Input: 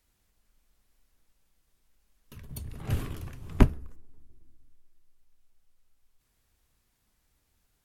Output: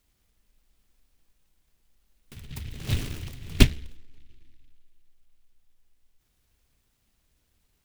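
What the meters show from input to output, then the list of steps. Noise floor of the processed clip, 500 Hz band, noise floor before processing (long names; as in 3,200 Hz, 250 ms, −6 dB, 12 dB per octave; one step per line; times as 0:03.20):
−72 dBFS, +0.5 dB, −74 dBFS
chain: short delay modulated by noise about 2,700 Hz, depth 0.28 ms
level +2.5 dB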